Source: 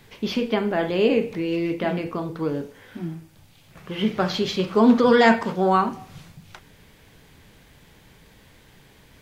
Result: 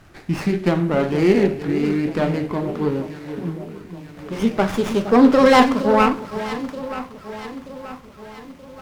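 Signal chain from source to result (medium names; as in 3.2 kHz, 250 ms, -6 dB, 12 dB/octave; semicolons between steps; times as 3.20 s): gliding tape speed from 77% -> 132%; echo whose repeats swap between lows and highs 465 ms, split 1 kHz, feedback 70%, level -10.5 dB; sliding maximum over 9 samples; trim +3.5 dB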